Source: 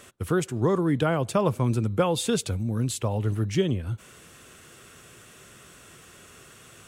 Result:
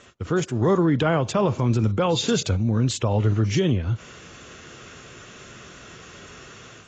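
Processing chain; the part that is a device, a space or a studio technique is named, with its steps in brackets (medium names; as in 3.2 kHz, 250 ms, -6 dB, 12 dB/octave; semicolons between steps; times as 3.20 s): low-bitrate web radio (level rider gain up to 6.5 dB; peak limiter -12 dBFS, peak gain reduction 7.5 dB; AAC 24 kbps 16 kHz)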